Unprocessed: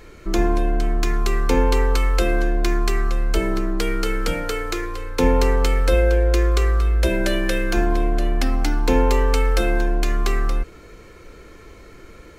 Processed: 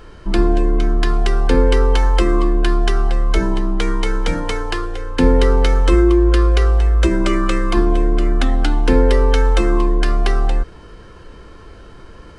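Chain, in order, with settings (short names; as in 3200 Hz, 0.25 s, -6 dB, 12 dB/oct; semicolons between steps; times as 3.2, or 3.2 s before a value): high shelf 8800 Hz -5 dB; formant shift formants -6 st; gain +4.5 dB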